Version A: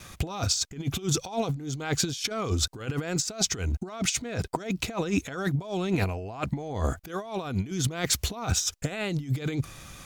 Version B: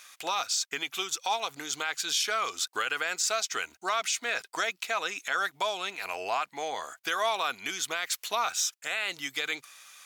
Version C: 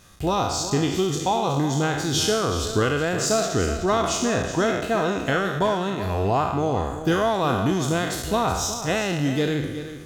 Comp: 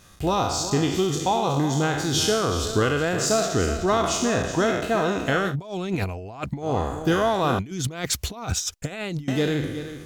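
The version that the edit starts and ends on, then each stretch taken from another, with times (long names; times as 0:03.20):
C
0:05.51–0:06.66: punch in from A, crossfade 0.10 s
0:07.59–0:09.28: punch in from A
not used: B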